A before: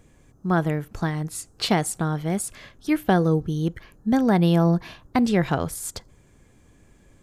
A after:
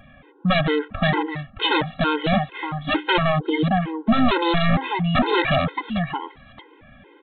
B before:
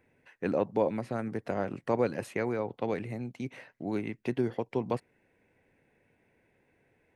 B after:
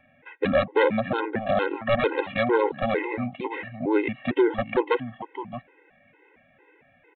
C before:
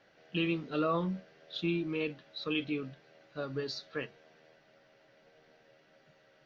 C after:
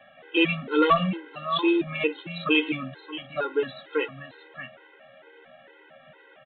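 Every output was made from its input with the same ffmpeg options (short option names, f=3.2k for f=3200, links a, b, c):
-filter_complex "[0:a]asplit=2[a][b];[b]highpass=f=720:p=1,volume=15dB,asoftclip=type=tanh:threshold=-5dB[c];[a][c]amix=inputs=2:normalize=0,lowpass=f=2.4k:p=1,volume=-6dB,aecho=1:1:621|622:0.188|0.224,aresample=8000,aeval=exprs='0.119*(abs(mod(val(0)/0.119+3,4)-2)-1)':c=same,aresample=44100,afftfilt=real='re*gt(sin(2*PI*2.2*pts/sr)*(1-2*mod(floor(b*sr/1024/270),2)),0)':imag='im*gt(sin(2*PI*2.2*pts/sr)*(1-2*mod(floor(b*sr/1024/270),2)),0)':win_size=1024:overlap=0.75,volume=8.5dB"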